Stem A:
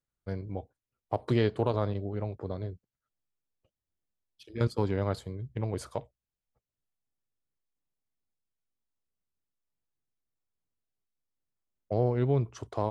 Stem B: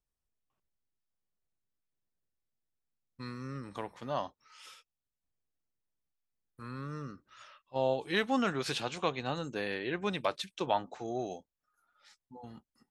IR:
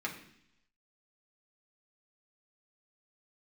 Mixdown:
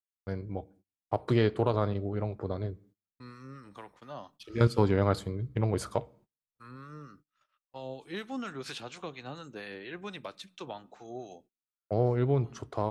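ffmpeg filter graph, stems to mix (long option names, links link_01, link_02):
-filter_complex "[0:a]dynaudnorm=framelen=590:gausssize=9:maxgain=4dB,volume=-0.5dB,asplit=2[link_01][link_02];[link_02]volume=-19dB[link_03];[1:a]acrossover=split=380|3000[link_04][link_05][link_06];[link_05]acompressor=threshold=-34dB:ratio=6[link_07];[link_04][link_07][link_06]amix=inputs=3:normalize=0,acrossover=split=850[link_08][link_09];[link_08]aeval=exprs='val(0)*(1-0.5/2+0.5/2*cos(2*PI*4.3*n/s))':channel_layout=same[link_10];[link_09]aeval=exprs='val(0)*(1-0.5/2-0.5/2*cos(2*PI*4.3*n/s))':channel_layout=same[link_11];[link_10][link_11]amix=inputs=2:normalize=0,volume=-4.5dB,asplit=2[link_12][link_13];[link_13]volume=-20dB[link_14];[2:a]atrim=start_sample=2205[link_15];[link_03][link_14]amix=inputs=2:normalize=0[link_16];[link_16][link_15]afir=irnorm=-1:irlink=0[link_17];[link_01][link_12][link_17]amix=inputs=3:normalize=0,agate=range=-29dB:threshold=-58dB:ratio=16:detection=peak,equalizer=frequency=1300:width_type=o:width=0.36:gain=4"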